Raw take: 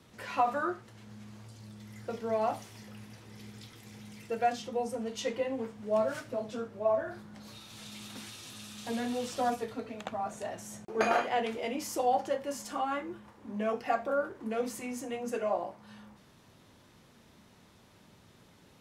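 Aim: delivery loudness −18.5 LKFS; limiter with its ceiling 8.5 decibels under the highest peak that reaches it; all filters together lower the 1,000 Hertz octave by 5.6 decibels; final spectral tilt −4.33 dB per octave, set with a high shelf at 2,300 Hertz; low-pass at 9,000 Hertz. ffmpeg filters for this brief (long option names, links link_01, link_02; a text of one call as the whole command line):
ffmpeg -i in.wav -af "lowpass=9000,equalizer=frequency=1000:width_type=o:gain=-8.5,highshelf=frequency=2300:gain=-4,volume=20.5dB,alimiter=limit=-6.5dB:level=0:latency=1" out.wav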